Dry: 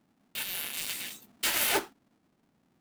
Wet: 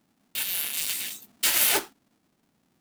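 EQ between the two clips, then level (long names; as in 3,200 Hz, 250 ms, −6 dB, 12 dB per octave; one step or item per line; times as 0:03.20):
high-shelf EQ 3,100 Hz +8 dB
0.0 dB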